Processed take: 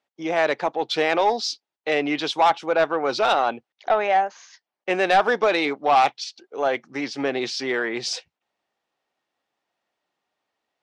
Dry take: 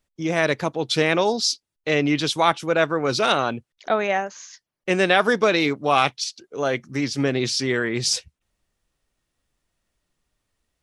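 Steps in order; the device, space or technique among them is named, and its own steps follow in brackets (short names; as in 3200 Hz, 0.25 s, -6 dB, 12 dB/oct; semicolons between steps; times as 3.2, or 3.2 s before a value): intercom (BPF 330–4200 Hz; bell 790 Hz +8.5 dB 0.45 oct; soft clip -10 dBFS, distortion -15 dB)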